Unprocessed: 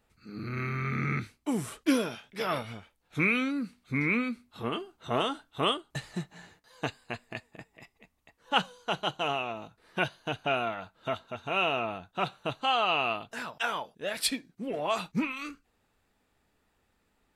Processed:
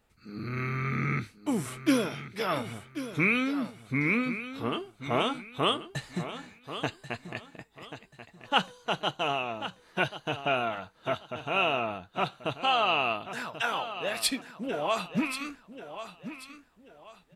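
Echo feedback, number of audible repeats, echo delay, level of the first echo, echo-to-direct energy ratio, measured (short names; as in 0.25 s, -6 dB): 30%, 3, 1.086 s, -12.0 dB, -11.5 dB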